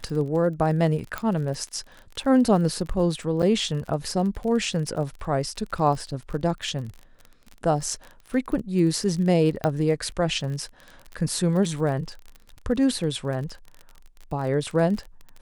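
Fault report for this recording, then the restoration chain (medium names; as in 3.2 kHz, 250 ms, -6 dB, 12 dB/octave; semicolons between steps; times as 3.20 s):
crackle 34 per s -32 dBFS
1.18 s: pop -14 dBFS
3.42–3.43 s: dropout 7.2 ms
9.64 s: pop -12 dBFS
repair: de-click; interpolate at 3.42 s, 7.2 ms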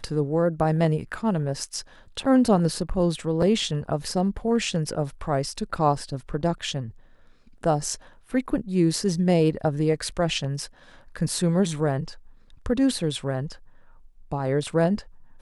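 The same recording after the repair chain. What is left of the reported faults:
nothing left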